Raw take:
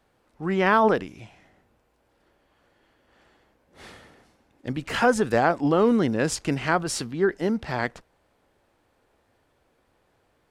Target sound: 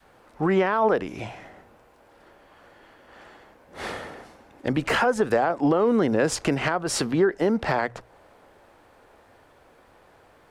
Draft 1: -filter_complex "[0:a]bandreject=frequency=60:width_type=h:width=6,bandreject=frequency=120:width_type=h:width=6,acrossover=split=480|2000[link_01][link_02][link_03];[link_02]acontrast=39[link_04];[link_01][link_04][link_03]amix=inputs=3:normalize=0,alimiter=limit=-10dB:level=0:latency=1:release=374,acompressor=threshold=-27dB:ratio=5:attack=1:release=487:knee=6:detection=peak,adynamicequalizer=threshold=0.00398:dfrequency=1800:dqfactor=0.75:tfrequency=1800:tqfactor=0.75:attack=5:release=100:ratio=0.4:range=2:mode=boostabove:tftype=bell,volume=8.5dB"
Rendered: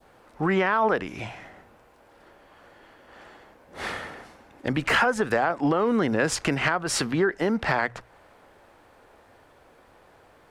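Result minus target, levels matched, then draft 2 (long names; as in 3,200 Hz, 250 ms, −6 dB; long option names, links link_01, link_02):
2,000 Hz band +4.5 dB
-filter_complex "[0:a]bandreject=frequency=60:width_type=h:width=6,bandreject=frequency=120:width_type=h:width=6,acrossover=split=480|2000[link_01][link_02][link_03];[link_02]acontrast=39[link_04];[link_01][link_04][link_03]amix=inputs=3:normalize=0,alimiter=limit=-10dB:level=0:latency=1:release=374,acompressor=threshold=-27dB:ratio=5:attack=1:release=487:knee=6:detection=peak,adynamicequalizer=threshold=0.00398:dfrequency=480:dqfactor=0.75:tfrequency=480:tqfactor=0.75:attack=5:release=100:ratio=0.4:range=2:mode=boostabove:tftype=bell,volume=8.5dB"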